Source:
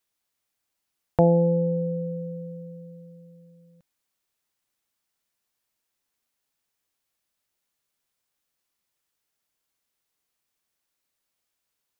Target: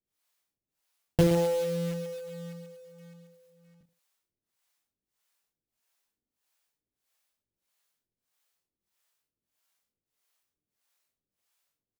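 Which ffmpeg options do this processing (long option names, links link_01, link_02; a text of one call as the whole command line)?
ffmpeg -i in.wav -filter_complex "[0:a]aecho=1:1:20|46|79.8|123.7|180.9:0.631|0.398|0.251|0.158|0.1,acrossover=split=460[link_01][link_02];[link_01]aeval=exprs='val(0)*(1-1/2+1/2*cos(2*PI*1.6*n/s))':channel_layout=same[link_03];[link_02]aeval=exprs='val(0)*(1-1/2-1/2*cos(2*PI*1.6*n/s))':channel_layout=same[link_04];[link_03][link_04]amix=inputs=2:normalize=0,acrusher=bits=3:mode=log:mix=0:aa=0.000001,volume=1dB" out.wav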